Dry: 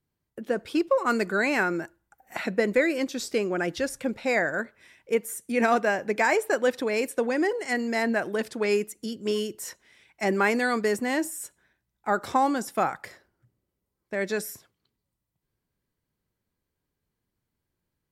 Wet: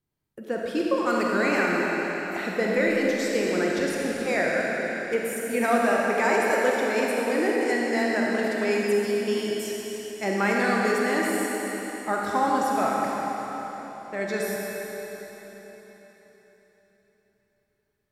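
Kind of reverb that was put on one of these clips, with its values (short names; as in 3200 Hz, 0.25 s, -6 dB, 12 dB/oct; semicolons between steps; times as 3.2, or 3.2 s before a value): digital reverb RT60 4.4 s, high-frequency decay 0.95×, pre-delay 5 ms, DRR -3.5 dB; gain -3 dB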